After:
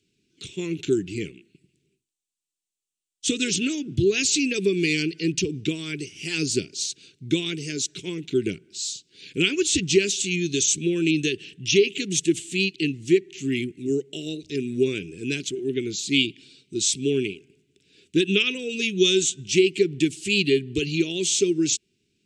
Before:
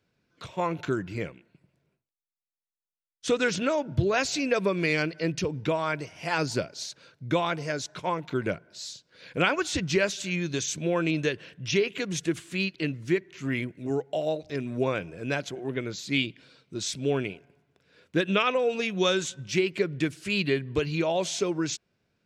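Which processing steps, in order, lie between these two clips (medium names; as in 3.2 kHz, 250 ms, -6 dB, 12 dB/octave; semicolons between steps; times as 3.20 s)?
FFT filter 130 Hz 0 dB, 400 Hz +8 dB, 560 Hz -22 dB, 920 Hz -27 dB, 1.4 kHz -16 dB, 2.8 kHz +9 dB, 5 kHz +6 dB, 8 kHz +15 dB, 13 kHz -3 dB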